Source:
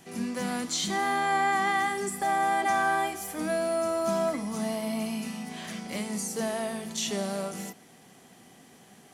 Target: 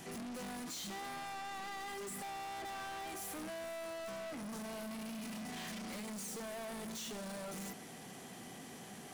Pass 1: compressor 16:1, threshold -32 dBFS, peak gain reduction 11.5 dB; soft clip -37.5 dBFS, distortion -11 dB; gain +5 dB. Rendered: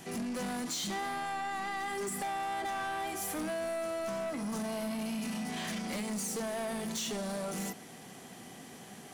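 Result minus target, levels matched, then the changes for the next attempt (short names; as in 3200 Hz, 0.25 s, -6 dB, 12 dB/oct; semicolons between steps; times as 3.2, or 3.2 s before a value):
soft clip: distortion -6 dB
change: soft clip -48 dBFS, distortion -5 dB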